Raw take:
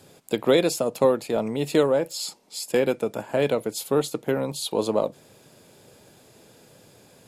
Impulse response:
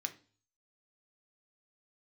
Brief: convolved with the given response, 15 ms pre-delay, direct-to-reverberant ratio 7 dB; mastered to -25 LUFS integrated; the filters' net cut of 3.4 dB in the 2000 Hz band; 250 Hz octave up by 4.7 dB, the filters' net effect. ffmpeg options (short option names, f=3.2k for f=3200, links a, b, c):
-filter_complex "[0:a]equalizer=f=250:t=o:g=6,equalizer=f=2k:t=o:g=-4.5,asplit=2[a][b];[1:a]atrim=start_sample=2205,adelay=15[c];[b][c]afir=irnorm=-1:irlink=0,volume=-7dB[d];[a][d]amix=inputs=2:normalize=0,volume=-3dB"